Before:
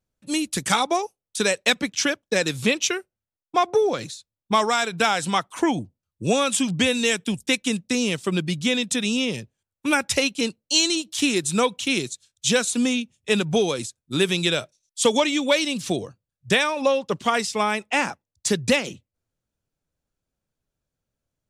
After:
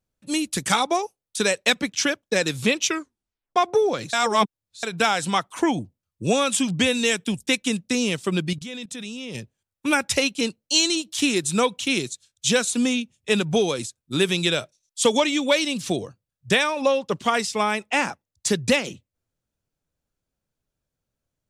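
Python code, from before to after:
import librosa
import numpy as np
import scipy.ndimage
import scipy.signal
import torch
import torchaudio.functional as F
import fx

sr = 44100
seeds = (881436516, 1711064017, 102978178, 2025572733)

y = fx.level_steps(x, sr, step_db=17, at=(8.53, 9.35))
y = fx.edit(y, sr, fx.tape_stop(start_s=2.87, length_s=0.69),
    fx.reverse_span(start_s=4.13, length_s=0.7), tone=tone)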